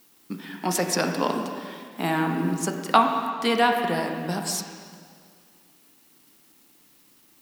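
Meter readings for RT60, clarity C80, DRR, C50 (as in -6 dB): 2.1 s, 5.5 dB, 3.0 dB, 4.5 dB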